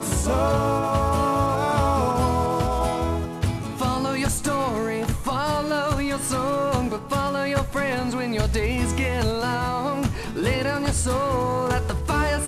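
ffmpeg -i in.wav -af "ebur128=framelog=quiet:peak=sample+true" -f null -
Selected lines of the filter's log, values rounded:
Integrated loudness:
  I:         -23.6 LUFS
  Threshold: -33.6 LUFS
Loudness range:
  LRA:         2.2 LU
  Threshold: -43.9 LUFS
  LRA low:   -24.6 LUFS
  LRA high:  -22.5 LUFS
Sample peak:
  Peak:       -9.3 dBFS
True peak:
  Peak:       -9.2 dBFS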